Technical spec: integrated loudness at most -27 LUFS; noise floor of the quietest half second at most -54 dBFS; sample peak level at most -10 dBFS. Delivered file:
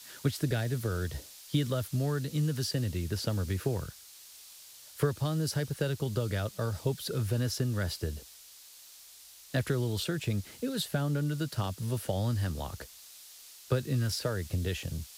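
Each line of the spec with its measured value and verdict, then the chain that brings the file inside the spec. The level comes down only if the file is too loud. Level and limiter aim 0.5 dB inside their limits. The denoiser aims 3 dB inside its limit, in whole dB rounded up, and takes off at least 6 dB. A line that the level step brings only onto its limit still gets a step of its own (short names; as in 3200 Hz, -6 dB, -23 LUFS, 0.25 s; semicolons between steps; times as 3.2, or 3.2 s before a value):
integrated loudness -32.5 LUFS: OK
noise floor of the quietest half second -53 dBFS: fail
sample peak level -14.0 dBFS: OK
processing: denoiser 6 dB, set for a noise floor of -53 dBFS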